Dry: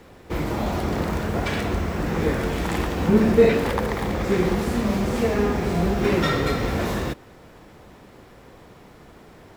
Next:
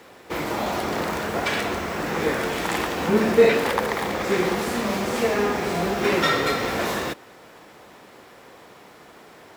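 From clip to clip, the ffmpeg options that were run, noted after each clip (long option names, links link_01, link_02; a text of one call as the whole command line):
ffmpeg -i in.wav -af "highpass=frequency=570:poles=1,volume=4.5dB" out.wav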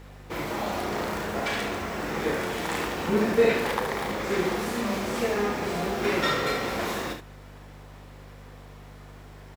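ffmpeg -i in.wav -filter_complex "[0:a]aeval=exprs='val(0)+0.0112*(sin(2*PI*50*n/s)+sin(2*PI*2*50*n/s)/2+sin(2*PI*3*50*n/s)/3+sin(2*PI*4*50*n/s)/4+sin(2*PI*5*50*n/s)/5)':channel_layout=same,asplit=2[link_01][link_02];[link_02]aecho=0:1:34|72:0.422|0.398[link_03];[link_01][link_03]amix=inputs=2:normalize=0,volume=-5.5dB" out.wav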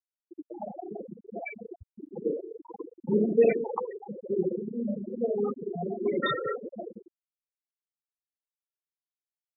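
ffmpeg -i in.wav -af "afftfilt=real='re*gte(hypot(re,im),0.178)':imag='im*gte(hypot(re,im),0.178)':win_size=1024:overlap=0.75" out.wav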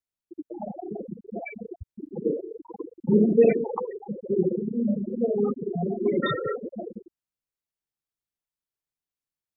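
ffmpeg -i in.wav -af "lowshelf=frequency=280:gain=11" out.wav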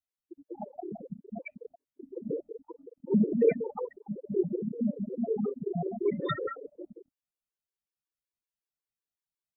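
ffmpeg -i in.wav -af "afftfilt=real='re*gt(sin(2*PI*5.4*pts/sr)*(1-2*mod(floor(b*sr/1024/300),2)),0)':imag='im*gt(sin(2*PI*5.4*pts/sr)*(1-2*mod(floor(b*sr/1024/300),2)),0)':win_size=1024:overlap=0.75,volume=-2.5dB" out.wav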